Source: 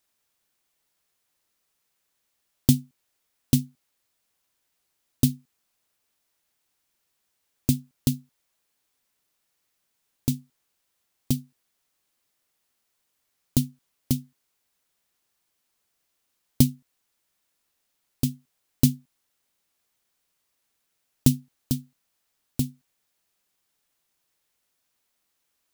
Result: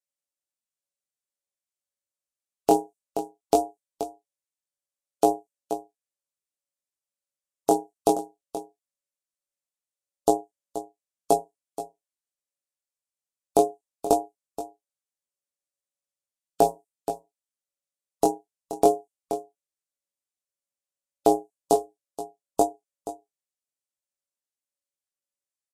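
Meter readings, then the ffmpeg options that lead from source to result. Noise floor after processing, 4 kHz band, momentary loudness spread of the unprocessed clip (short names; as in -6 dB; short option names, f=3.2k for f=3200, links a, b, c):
under -85 dBFS, -6.0 dB, 11 LU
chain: -filter_complex "[0:a]aeval=exprs='if(lt(val(0),0),0.447*val(0),val(0))':c=same,equalizer=f=125:t=o:w=1:g=6,equalizer=f=1k:t=o:w=1:g=-3,equalizer=f=8k:t=o:w=1:g=10,afftdn=nr=28:nf=-37,acrossover=split=3100[a][b];[b]acompressor=threshold=-29dB:ratio=4:attack=1:release=60[c];[a][c]amix=inputs=2:normalize=0,lowshelf=f=78:g=-2.5,asplit=2[d][e];[e]acompressor=threshold=-29dB:ratio=12,volume=0dB[f];[d][f]amix=inputs=2:normalize=0,aeval=exprs='val(0)*sin(2*PI*560*n/s)':c=same,flanger=delay=16:depth=6.2:speed=0.19,aecho=1:1:477:0.188,aresample=32000,aresample=44100,alimiter=level_in=12dB:limit=-1dB:release=50:level=0:latency=1,volume=-4dB"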